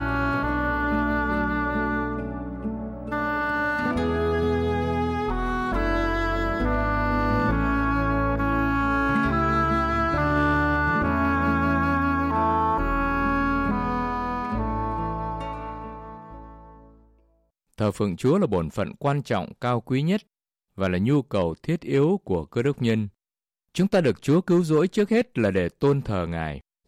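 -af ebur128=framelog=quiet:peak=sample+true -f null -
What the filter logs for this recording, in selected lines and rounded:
Integrated loudness:
  I:         -24.2 LUFS
  Threshold: -34.6 LUFS
Loudness range:
  LRA:         6.1 LU
  Threshold: -44.6 LUFS
  LRA low:   -28.4 LUFS
  LRA high:  -22.4 LUFS
Sample peak:
  Peak:      -12.2 dBFS
True peak:
  Peak:      -12.2 dBFS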